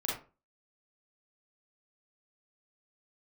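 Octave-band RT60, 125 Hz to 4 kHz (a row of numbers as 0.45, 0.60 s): 0.40, 0.35, 0.35, 0.30, 0.25, 0.20 s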